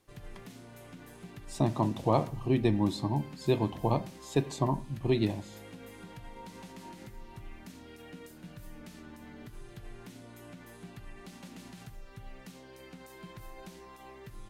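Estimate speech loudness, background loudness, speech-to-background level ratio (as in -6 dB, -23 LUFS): -30.5 LUFS, -49.0 LUFS, 18.5 dB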